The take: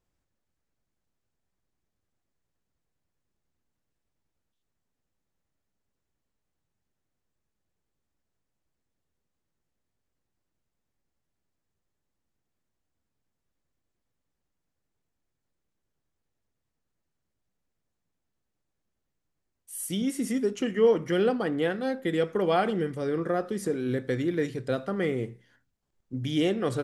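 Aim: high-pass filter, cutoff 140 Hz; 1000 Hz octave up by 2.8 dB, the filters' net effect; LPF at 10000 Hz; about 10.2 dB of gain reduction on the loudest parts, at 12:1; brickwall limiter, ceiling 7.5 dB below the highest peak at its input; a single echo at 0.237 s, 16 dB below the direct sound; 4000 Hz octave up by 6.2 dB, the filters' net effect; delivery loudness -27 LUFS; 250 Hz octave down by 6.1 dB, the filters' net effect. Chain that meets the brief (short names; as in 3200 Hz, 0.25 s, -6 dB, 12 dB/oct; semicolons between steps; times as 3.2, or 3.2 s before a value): HPF 140 Hz; LPF 10000 Hz; bell 250 Hz -8 dB; bell 1000 Hz +4.5 dB; bell 4000 Hz +8.5 dB; compressor 12:1, threshold -27 dBFS; limiter -25 dBFS; echo 0.237 s -16 dB; gain +8.5 dB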